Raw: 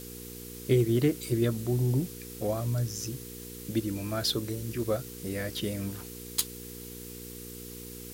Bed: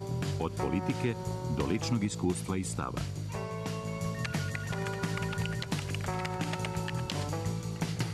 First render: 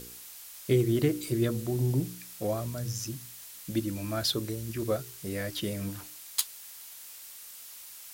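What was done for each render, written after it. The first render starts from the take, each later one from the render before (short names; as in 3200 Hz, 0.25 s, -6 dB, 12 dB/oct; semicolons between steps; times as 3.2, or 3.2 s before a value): de-hum 60 Hz, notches 8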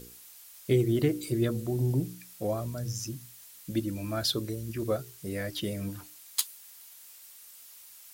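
denoiser 6 dB, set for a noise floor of -47 dBFS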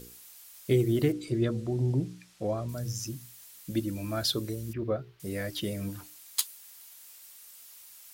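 1.12–2.69 air absorption 77 m; 4.73–5.2 air absorption 340 m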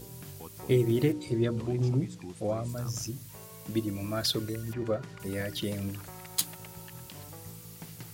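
add bed -13 dB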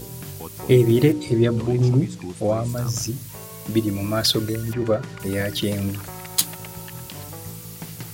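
gain +9.5 dB; limiter -1 dBFS, peak gain reduction 1 dB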